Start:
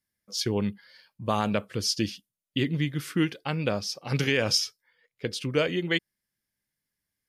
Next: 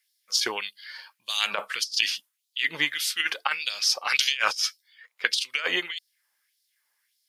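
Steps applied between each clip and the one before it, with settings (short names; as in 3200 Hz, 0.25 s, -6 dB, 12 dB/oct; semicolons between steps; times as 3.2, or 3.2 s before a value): LFO high-pass sine 1.7 Hz 840–4300 Hz; negative-ratio compressor -31 dBFS, ratio -0.5; gain +7 dB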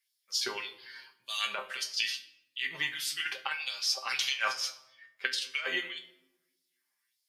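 resonator 130 Hz, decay 0.17 s, harmonics all, mix 90%; shoebox room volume 3400 m³, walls furnished, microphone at 1.2 m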